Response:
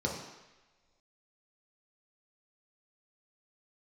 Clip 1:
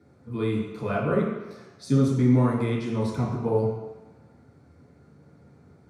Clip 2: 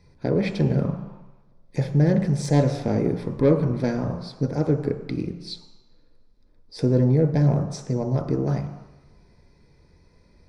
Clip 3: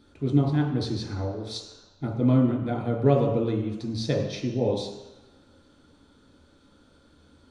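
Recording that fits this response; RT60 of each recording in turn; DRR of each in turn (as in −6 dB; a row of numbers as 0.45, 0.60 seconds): 3; non-exponential decay, non-exponential decay, non-exponential decay; −7.5, 4.5, −2.5 decibels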